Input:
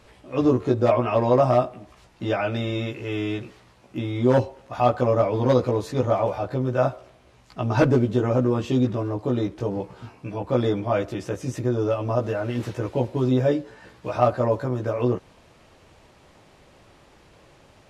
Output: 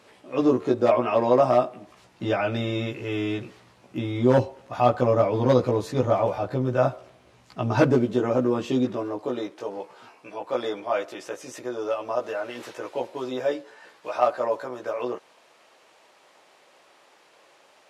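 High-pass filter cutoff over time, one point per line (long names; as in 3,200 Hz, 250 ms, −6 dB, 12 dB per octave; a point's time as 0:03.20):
0:01.67 210 Hz
0:02.28 95 Hz
0:07.66 95 Hz
0:08.10 200 Hz
0:08.74 200 Hz
0:09.63 530 Hz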